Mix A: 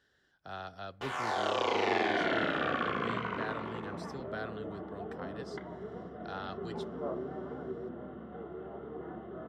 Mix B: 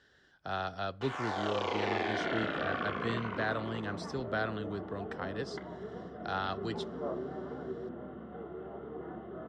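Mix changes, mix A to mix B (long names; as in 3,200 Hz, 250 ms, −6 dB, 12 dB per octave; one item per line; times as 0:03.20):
speech +7.0 dB
first sound −3.5 dB
master: add low-pass filter 7,400 Hz 12 dB per octave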